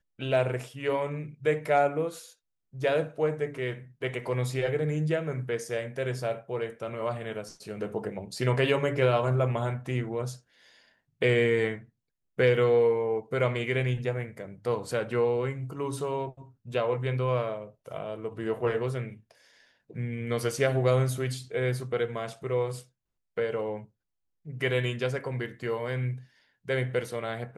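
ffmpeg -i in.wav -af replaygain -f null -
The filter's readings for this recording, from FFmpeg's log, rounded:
track_gain = +8.4 dB
track_peak = 0.196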